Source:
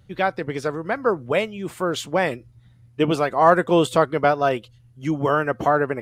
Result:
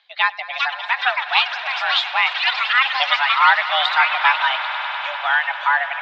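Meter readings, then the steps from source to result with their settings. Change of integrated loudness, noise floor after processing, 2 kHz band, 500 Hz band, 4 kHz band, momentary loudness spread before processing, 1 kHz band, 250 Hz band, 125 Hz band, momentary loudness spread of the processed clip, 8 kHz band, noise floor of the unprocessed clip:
+4.0 dB, -33 dBFS, +11.5 dB, -14.5 dB, +15.0 dB, 10 LU, +4.0 dB, under -40 dB, under -40 dB, 8 LU, under -10 dB, -53 dBFS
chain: differentiator; reverb removal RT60 1.7 s; echoes that change speed 0.464 s, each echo +7 st, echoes 3; mistuned SSB +270 Hz 360–3600 Hz; on a send: swelling echo 99 ms, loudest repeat 5, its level -16 dB; on the sum: maximiser +21 dB; gain -1 dB

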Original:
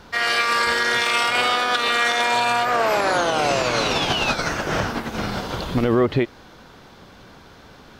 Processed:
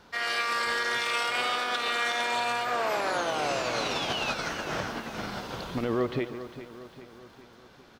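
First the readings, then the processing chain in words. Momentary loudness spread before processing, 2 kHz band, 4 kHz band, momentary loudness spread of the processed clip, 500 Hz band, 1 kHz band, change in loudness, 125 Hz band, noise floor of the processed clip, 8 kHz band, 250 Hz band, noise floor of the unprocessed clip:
8 LU, -8.5 dB, -8.5 dB, 10 LU, -9.0 dB, -9.0 dB, -9.0 dB, -12.0 dB, -54 dBFS, -8.5 dB, -10.0 dB, -47 dBFS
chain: low shelf 110 Hz -8 dB; feedback echo 0.404 s, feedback 53%, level -13 dB; lo-fi delay 0.142 s, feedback 35%, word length 7-bit, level -14 dB; gain -9 dB

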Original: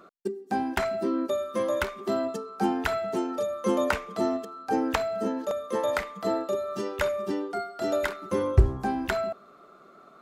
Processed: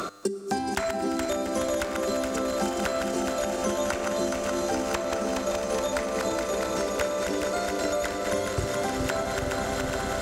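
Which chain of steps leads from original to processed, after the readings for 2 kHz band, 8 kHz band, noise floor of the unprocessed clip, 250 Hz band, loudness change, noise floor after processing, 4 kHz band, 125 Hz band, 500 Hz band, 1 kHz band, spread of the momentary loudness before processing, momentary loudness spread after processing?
+2.0 dB, +12.0 dB, -53 dBFS, 0.0 dB, +0.5 dB, -32 dBFS, +6.0 dB, -4.5 dB, +1.0 dB, +1.0 dB, 5 LU, 1 LU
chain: regenerating reverse delay 0.21 s, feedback 84%, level -6 dB; bell 7100 Hz +12 dB 1.5 oct; resonator 100 Hz, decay 1.1 s, harmonics all, mix 60%; swelling echo 0.114 s, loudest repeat 8, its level -16 dB; three-band squash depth 100%; gain +3 dB

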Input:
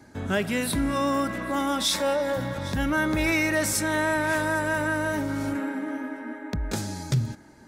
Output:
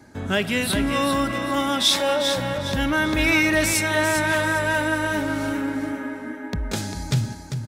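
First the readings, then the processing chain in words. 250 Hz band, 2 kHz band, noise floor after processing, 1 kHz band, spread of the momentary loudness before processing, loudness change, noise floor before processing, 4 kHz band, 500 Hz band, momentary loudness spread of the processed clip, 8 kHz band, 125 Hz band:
+3.0 dB, +5.0 dB, -36 dBFS, +3.0 dB, 9 LU, +4.0 dB, -50 dBFS, +8.0 dB, +3.0 dB, 11 LU, +3.5 dB, +3.0 dB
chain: feedback echo 0.397 s, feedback 24%, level -7 dB; dynamic EQ 3100 Hz, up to +7 dB, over -45 dBFS, Q 1.4; gain +2 dB

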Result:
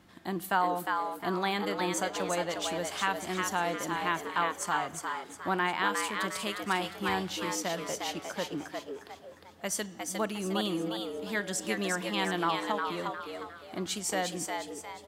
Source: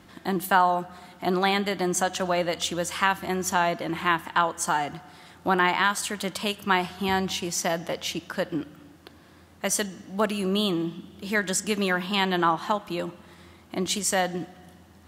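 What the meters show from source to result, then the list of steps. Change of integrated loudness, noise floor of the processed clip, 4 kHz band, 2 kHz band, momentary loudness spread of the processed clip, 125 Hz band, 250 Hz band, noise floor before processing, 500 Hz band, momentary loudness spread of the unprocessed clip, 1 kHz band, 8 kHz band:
-6.0 dB, -50 dBFS, -5.5 dB, -5.5 dB, 9 LU, -7.5 dB, -6.5 dB, -53 dBFS, -5.5 dB, 10 LU, -5.5 dB, -6.0 dB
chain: frequency-shifting echo 0.356 s, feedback 39%, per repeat +120 Hz, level -4 dB; gain -7.5 dB

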